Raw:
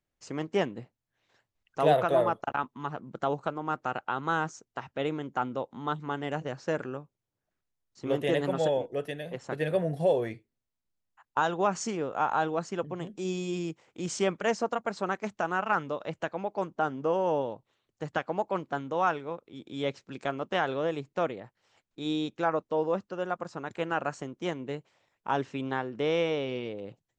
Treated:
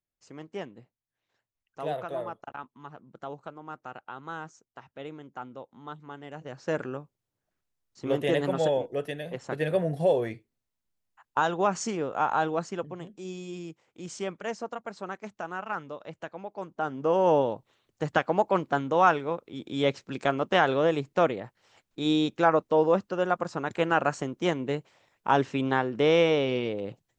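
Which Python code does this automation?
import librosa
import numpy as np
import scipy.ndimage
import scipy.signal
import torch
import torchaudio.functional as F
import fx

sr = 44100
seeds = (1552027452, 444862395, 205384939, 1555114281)

y = fx.gain(x, sr, db=fx.line((6.33, -9.5), (6.74, 1.5), (12.6, 1.5), (13.19, -6.0), (16.59, -6.0), (17.28, 6.0)))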